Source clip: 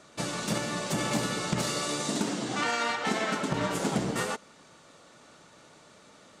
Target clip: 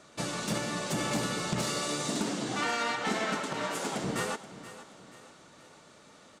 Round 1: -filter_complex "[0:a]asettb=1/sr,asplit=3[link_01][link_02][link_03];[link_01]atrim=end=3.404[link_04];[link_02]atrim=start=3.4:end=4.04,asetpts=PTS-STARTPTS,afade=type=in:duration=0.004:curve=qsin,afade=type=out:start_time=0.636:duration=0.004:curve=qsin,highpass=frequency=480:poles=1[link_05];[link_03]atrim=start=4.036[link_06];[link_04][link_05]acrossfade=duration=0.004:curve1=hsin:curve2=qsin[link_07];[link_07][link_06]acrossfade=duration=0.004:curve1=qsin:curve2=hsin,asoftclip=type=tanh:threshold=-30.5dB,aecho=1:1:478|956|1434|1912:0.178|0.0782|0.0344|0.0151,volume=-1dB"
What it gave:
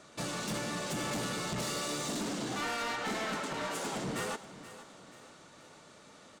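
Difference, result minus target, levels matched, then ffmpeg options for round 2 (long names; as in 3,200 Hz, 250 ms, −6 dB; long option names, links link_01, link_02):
soft clipping: distortion +13 dB
-filter_complex "[0:a]asettb=1/sr,asplit=3[link_01][link_02][link_03];[link_01]atrim=end=3.404[link_04];[link_02]atrim=start=3.4:end=4.04,asetpts=PTS-STARTPTS,afade=type=in:duration=0.004:curve=qsin,afade=type=out:start_time=0.636:duration=0.004:curve=qsin,highpass=frequency=480:poles=1[link_05];[link_03]atrim=start=4.036[link_06];[link_04][link_05]acrossfade=duration=0.004:curve1=hsin:curve2=qsin[link_07];[link_07][link_06]acrossfade=duration=0.004:curve1=qsin:curve2=hsin,asoftclip=type=tanh:threshold=-19dB,aecho=1:1:478|956|1434|1912:0.178|0.0782|0.0344|0.0151,volume=-1dB"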